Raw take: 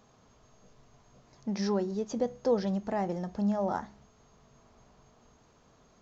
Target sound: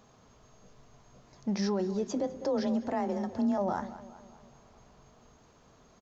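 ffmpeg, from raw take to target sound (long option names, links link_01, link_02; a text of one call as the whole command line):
ffmpeg -i in.wav -filter_complex "[0:a]asettb=1/sr,asplit=3[link_01][link_02][link_03];[link_01]atrim=end=2.074[link_04];[link_02]atrim=start=2.07:end=3.58,asetpts=PTS-STARTPTS,afade=type=in:duration=0.004:curve=qsin,afade=type=out:start_time=1.506:duration=0.004:curve=qsin,afreqshift=29[link_05];[link_03]atrim=start=3.576[link_06];[link_04][link_05]acrossfade=duration=0.004:curve1=hsin:curve2=qsin[link_07];[link_07][link_06]acrossfade=duration=0.004:curve1=qsin:curve2=hsin,asplit=2[link_08][link_09];[link_09]adelay=202,lowpass=frequency=4100:poles=1,volume=-17dB,asplit=2[link_10][link_11];[link_11]adelay=202,lowpass=frequency=4100:poles=1,volume=0.52,asplit=2[link_12][link_13];[link_13]adelay=202,lowpass=frequency=4100:poles=1,volume=0.52,asplit=2[link_14][link_15];[link_15]adelay=202,lowpass=frequency=4100:poles=1,volume=0.52,asplit=2[link_16][link_17];[link_17]adelay=202,lowpass=frequency=4100:poles=1,volume=0.52[link_18];[link_08][link_10][link_12][link_14][link_16][link_18]amix=inputs=6:normalize=0,alimiter=limit=-24dB:level=0:latency=1:release=18,volume=2dB" out.wav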